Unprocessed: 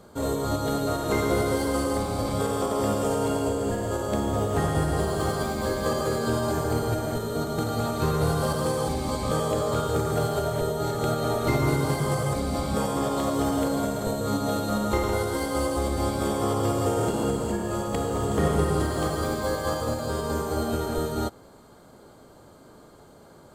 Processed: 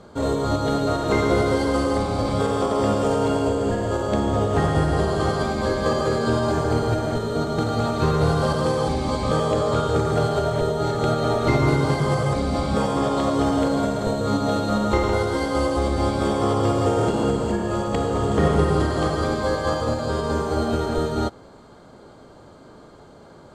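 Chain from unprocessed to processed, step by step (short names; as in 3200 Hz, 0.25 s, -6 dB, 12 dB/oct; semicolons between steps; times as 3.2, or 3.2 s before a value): LPF 5700 Hz 12 dB/oct; gain +4.5 dB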